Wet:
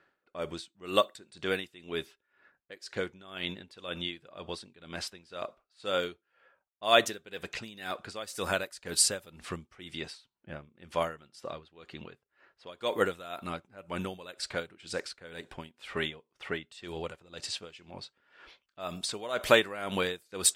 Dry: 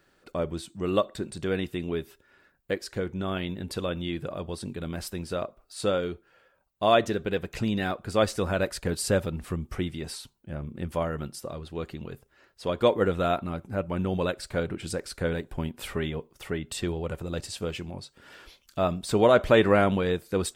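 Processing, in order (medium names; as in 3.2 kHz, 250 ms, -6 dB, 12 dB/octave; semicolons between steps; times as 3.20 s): level-controlled noise filter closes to 1.7 kHz, open at -23 dBFS; tilt EQ +3.5 dB/octave; logarithmic tremolo 2 Hz, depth 19 dB; trim +1.5 dB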